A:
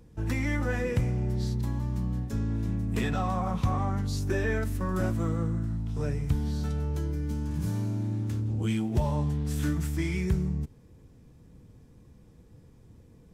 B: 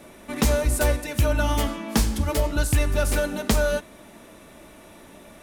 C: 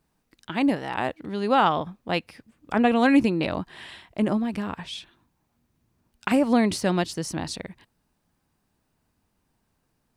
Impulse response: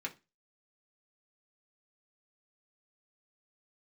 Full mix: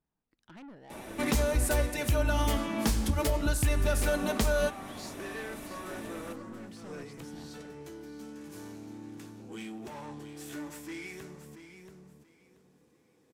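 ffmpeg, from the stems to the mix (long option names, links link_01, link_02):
-filter_complex "[0:a]highpass=300,asoftclip=type=tanh:threshold=-33dB,adelay=900,volume=-6dB,asplit=3[link_01][link_02][link_03];[link_02]volume=-5dB[link_04];[link_03]volume=-7.5dB[link_05];[1:a]adelay=900,volume=1.5dB[link_06];[2:a]highshelf=frequency=2900:gain=-9,acompressor=threshold=-23dB:ratio=3,asoftclip=type=tanh:threshold=-31.5dB,volume=-14dB[link_07];[3:a]atrim=start_sample=2205[link_08];[link_04][link_08]afir=irnorm=-1:irlink=0[link_09];[link_05]aecho=0:1:681|1362|2043|2724:1|0.22|0.0484|0.0106[link_10];[link_01][link_06][link_07][link_09][link_10]amix=inputs=5:normalize=0,alimiter=limit=-18dB:level=0:latency=1:release=322"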